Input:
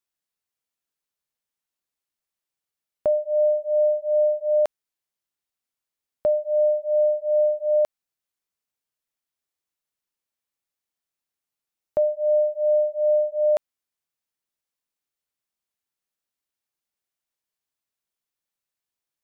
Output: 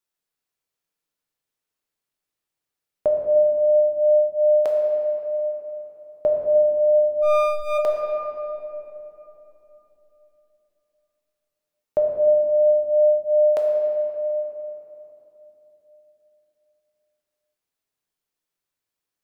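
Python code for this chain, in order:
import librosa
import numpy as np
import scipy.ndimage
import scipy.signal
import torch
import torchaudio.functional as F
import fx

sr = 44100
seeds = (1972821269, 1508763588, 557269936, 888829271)

y = fx.lower_of_two(x, sr, delay_ms=0.89, at=(7.21, 7.77), fade=0.02)
y = fx.peak_eq(y, sr, hz=420.0, db=3.0, octaves=0.83)
y = fx.room_shoebox(y, sr, seeds[0], volume_m3=190.0, walls='hard', distance_m=0.49)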